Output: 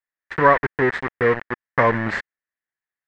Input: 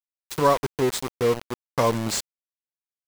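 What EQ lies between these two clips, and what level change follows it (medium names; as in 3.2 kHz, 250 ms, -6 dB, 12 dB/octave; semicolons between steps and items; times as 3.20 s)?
resonant low-pass 1.8 kHz, resonance Q 7.1; +2.0 dB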